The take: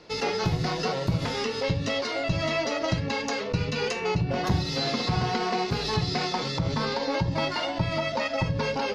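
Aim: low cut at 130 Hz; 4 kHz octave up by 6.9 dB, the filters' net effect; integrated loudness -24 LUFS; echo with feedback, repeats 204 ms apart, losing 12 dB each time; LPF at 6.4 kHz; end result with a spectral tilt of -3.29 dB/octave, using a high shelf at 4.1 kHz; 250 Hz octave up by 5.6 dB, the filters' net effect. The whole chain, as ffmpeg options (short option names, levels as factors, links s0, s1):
-af "highpass=130,lowpass=6400,equalizer=f=250:t=o:g=8.5,equalizer=f=4000:t=o:g=5.5,highshelf=f=4100:g=6,aecho=1:1:204|408|612:0.251|0.0628|0.0157,volume=0.944"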